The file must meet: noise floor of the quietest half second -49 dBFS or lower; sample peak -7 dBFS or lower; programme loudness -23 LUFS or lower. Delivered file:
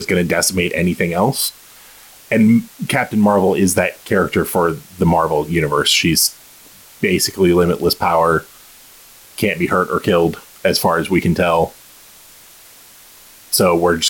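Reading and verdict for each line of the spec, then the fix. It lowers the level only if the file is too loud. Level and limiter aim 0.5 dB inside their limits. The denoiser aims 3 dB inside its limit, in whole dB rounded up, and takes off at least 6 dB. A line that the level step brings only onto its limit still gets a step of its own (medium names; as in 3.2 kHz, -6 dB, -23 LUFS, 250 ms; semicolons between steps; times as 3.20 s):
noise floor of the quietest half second -43 dBFS: fail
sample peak -3.5 dBFS: fail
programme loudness -16.0 LUFS: fail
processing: trim -7.5 dB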